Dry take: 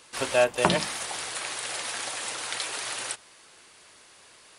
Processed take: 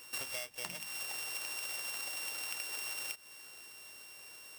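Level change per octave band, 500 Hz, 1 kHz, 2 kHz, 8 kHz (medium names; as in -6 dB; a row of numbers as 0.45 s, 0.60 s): -25.0 dB, -19.5 dB, -10.0 dB, -8.5 dB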